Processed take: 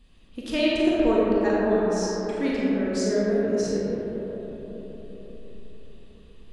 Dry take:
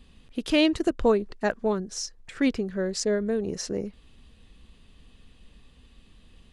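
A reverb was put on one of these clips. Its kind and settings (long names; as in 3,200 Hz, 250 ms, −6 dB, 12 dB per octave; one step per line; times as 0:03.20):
comb and all-pass reverb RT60 4.5 s, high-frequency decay 0.3×, pre-delay 0 ms, DRR −7 dB
level −6 dB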